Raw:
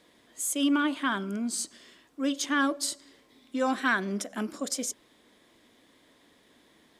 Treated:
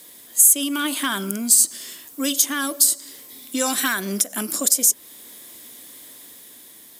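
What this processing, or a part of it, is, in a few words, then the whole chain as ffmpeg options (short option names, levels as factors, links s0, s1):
FM broadcast chain: -filter_complex "[0:a]highpass=57,dynaudnorm=f=250:g=7:m=1.41,acrossover=split=2100|7800[s0][s1][s2];[s0]acompressor=threshold=0.0398:ratio=4[s3];[s1]acompressor=threshold=0.0141:ratio=4[s4];[s2]acompressor=threshold=0.0112:ratio=4[s5];[s3][s4][s5]amix=inputs=3:normalize=0,aemphasis=mode=production:type=50fm,alimiter=limit=0.126:level=0:latency=1:release=377,asoftclip=type=hard:threshold=0.1,lowpass=f=15000:w=0.5412,lowpass=f=15000:w=1.3066,aemphasis=mode=production:type=50fm,volume=2"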